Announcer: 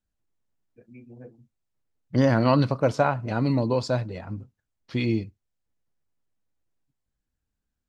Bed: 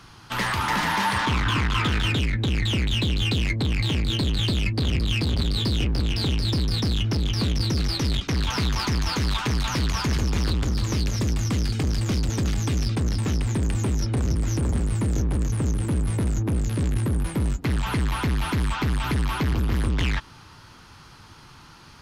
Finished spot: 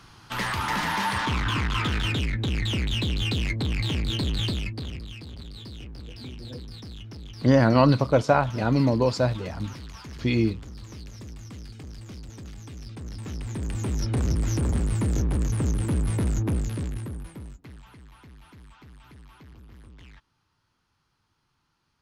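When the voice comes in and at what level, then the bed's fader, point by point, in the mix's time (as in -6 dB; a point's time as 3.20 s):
5.30 s, +2.0 dB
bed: 4.45 s -3 dB
5.17 s -17 dB
12.75 s -17 dB
14.15 s -1 dB
16.50 s -1 dB
17.97 s -25.5 dB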